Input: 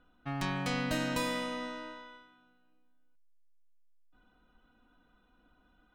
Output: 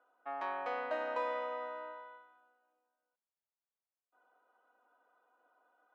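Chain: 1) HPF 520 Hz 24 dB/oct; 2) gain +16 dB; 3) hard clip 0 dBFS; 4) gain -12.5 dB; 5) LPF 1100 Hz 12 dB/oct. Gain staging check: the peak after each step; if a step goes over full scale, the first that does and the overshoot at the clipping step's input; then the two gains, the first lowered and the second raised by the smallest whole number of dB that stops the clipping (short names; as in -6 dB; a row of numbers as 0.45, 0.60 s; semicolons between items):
-22.0, -6.0, -6.0, -18.5, -25.0 dBFS; no overload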